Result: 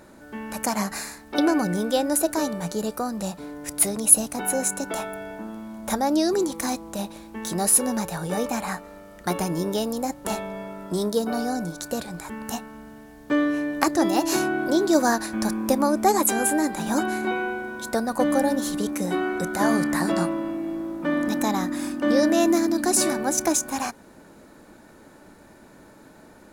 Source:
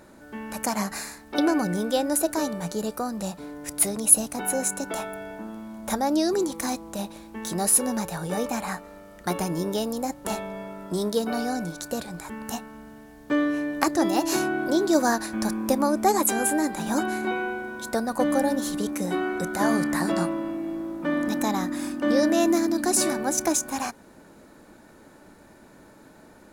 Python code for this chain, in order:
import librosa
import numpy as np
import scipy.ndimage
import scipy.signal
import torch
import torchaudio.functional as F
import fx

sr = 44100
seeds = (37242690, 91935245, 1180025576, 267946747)

y = fx.peak_eq(x, sr, hz=2500.0, db=-5.5, octaves=1.2, at=(11.06, 11.81))
y = y * librosa.db_to_amplitude(1.5)